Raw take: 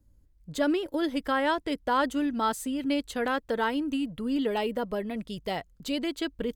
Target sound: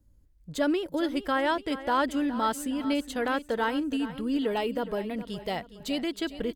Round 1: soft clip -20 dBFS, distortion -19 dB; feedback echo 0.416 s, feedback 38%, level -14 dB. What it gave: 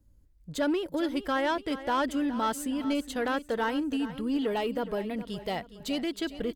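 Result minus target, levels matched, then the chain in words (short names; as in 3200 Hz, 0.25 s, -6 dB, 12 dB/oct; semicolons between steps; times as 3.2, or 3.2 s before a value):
soft clip: distortion +20 dB
soft clip -8 dBFS, distortion -39 dB; feedback echo 0.416 s, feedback 38%, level -14 dB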